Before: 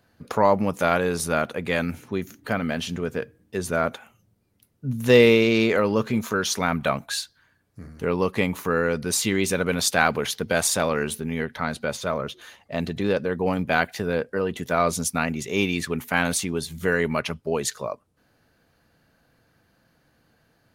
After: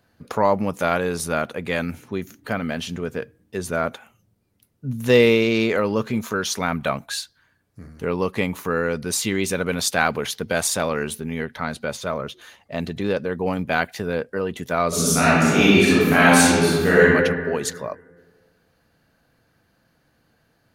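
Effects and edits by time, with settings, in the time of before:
14.88–17.01 reverb throw, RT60 1.7 s, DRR -10 dB

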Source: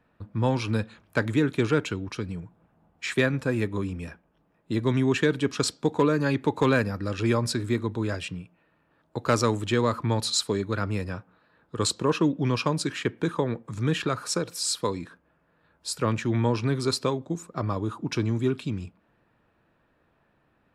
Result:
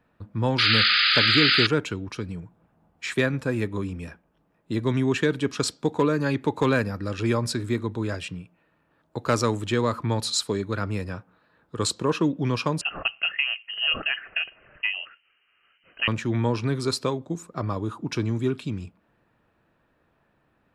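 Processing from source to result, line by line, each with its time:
0.58–1.67 painted sound noise 1200–5000 Hz -20 dBFS
12.81–16.08 inverted band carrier 3000 Hz

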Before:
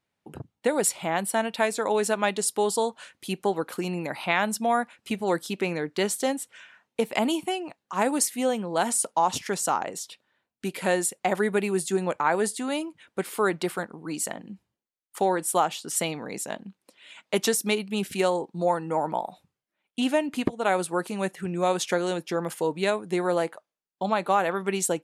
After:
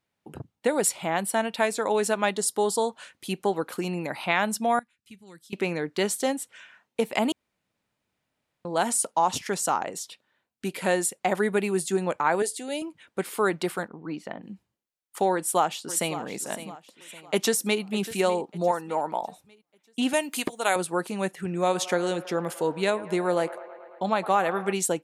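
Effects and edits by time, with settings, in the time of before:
2.32–2.9 bell 2500 Hz -12 dB 0.27 oct
4.79–5.53 passive tone stack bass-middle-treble 6-0-2
7.32–8.65 room tone
12.42–12.82 fixed phaser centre 470 Hz, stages 4
13.88–14.43 air absorption 300 m
15.32–16.19 echo throw 0.56 s, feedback 40%, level -13 dB
17.21–17.81 echo throw 0.6 s, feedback 40%, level -15.5 dB
18.71–19.23 low shelf 210 Hz -12 dB
20.13–20.76 RIAA curve recording
21.3–24.73 band-limited delay 0.109 s, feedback 75%, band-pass 980 Hz, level -15 dB

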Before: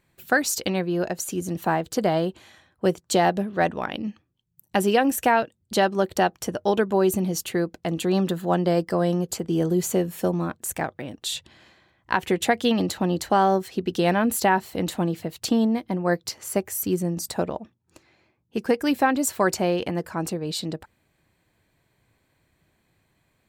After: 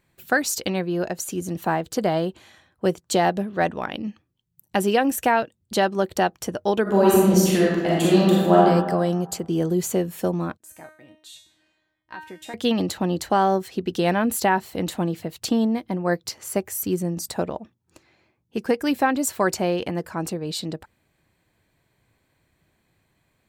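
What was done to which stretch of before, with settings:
6.82–8.61 reverb throw, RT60 1.4 s, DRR -6.5 dB
10.57–12.54 resonator 310 Hz, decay 0.51 s, mix 90%

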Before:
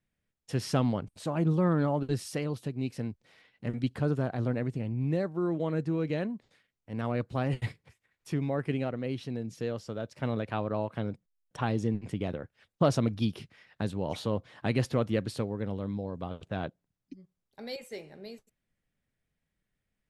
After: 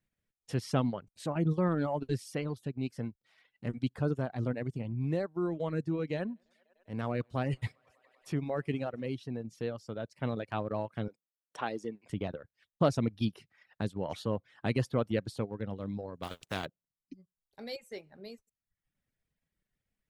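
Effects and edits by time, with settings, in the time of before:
6.16–9.13 thinning echo 99 ms, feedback 84%, high-pass 210 Hz, level -21 dB
11.08–12.1 HPF 350 Hz
16.22–16.65 spectral contrast lowered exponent 0.52
whole clip: reverb removal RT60 0.69 s; transient shaper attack -1 dB, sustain -5 dB; gain -1 dB

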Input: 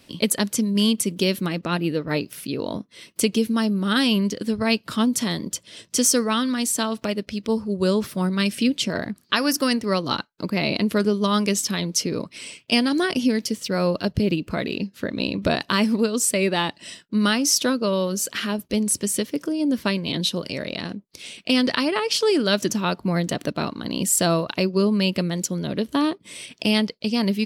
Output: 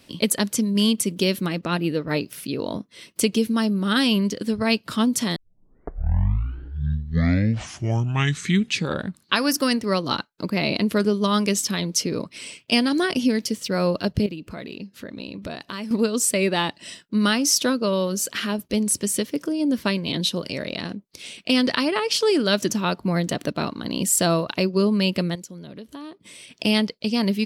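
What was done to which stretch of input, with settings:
5.36 tape start 4.14 s
14.26–15.91 compressor 2:1, threshold -38 dBFS
25.35–26.58 compressor 2.5:1, threshold -42 dBFS

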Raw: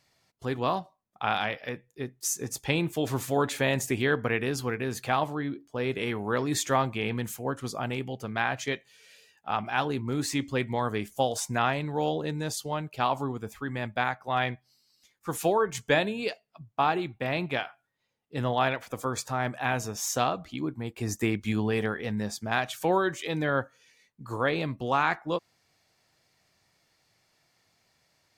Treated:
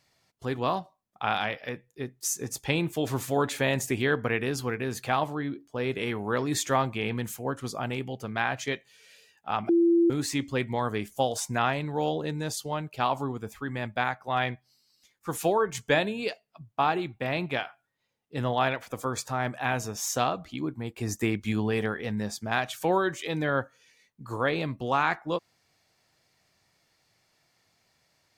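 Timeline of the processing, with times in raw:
9.69–10.1 bleep 339 Hz -17.5 dBFS

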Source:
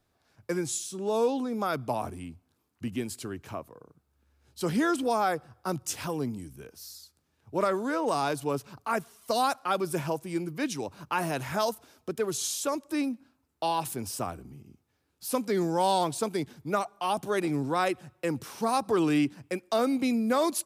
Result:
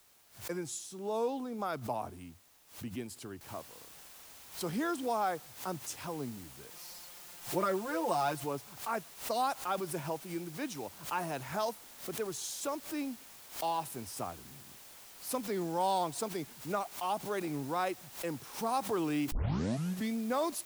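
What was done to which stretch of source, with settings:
3.41 noise floor step -56 dB -45 dB
6.7–8.44 comb 5.7 ms, depth 88%
19.32 tape start 0.85 s
whole clip: bell 810 Hz +4 dB 0.91 oct; backwards sustainer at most 140 dB/s; gain -8.5 dB

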